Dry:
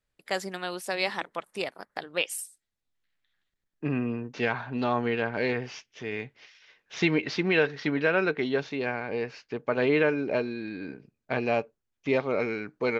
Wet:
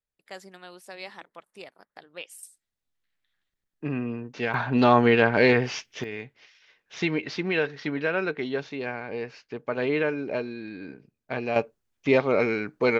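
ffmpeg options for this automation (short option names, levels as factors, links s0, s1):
-af "asetnsamples=n=441:p=0,asendcmd='2.43 volume volume -1dB;4.54 volume volume 9dB;6.04 volume volume -2dB;11.56 volume volume 5dB',volume=0.266"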